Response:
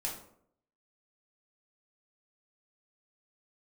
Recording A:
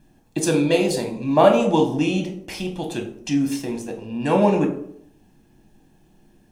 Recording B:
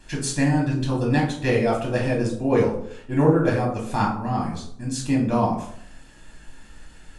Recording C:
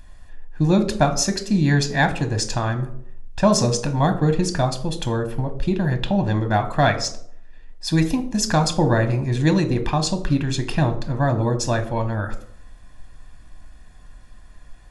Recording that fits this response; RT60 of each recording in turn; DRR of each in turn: B; 0.65, 0.65, 0.65 seconds; 2.5, −3.0, 7.0 decibels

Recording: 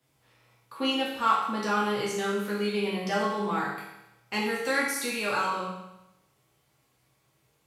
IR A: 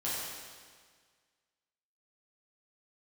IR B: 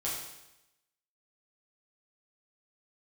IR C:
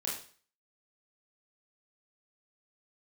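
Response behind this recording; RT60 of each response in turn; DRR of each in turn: B; 1.7, 0.90, 0.45 seconds; −10.0, −7.0, −5.5 decibels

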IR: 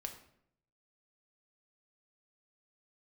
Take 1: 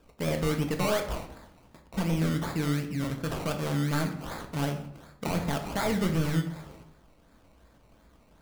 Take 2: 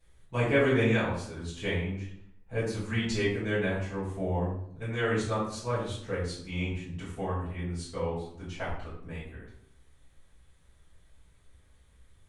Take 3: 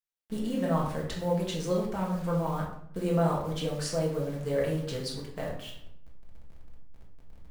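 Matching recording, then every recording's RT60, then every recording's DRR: 1; 0.70, 0.70, 0.70 seconds; 4.0, −12.5, −3.5 decibels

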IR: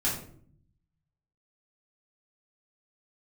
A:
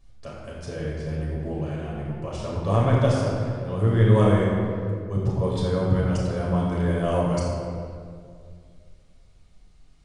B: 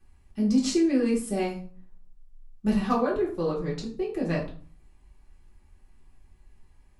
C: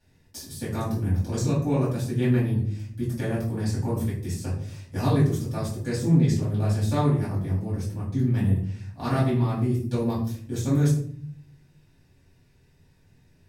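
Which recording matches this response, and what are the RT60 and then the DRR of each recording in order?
C; 2.2, 0.45, 0.55 seconds; −6.0, −5.5, −8.5 decibels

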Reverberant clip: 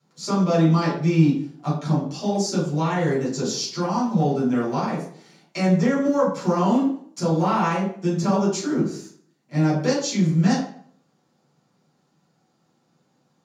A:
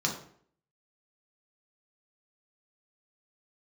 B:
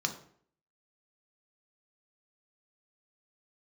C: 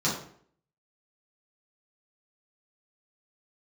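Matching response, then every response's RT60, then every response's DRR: C; 0.60, 0.60, 0.60 seconds; −1.0, 4.0, −9.0 decibels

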